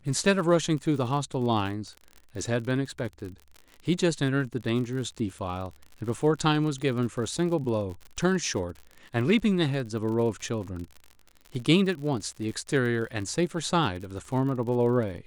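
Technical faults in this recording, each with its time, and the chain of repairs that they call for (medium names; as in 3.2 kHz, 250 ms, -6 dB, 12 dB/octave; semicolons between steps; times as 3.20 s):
crackle 54 per s -35 dBFS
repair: de-click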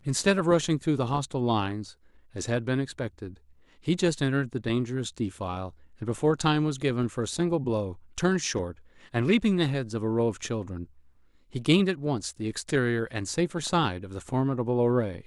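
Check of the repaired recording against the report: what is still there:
nothing left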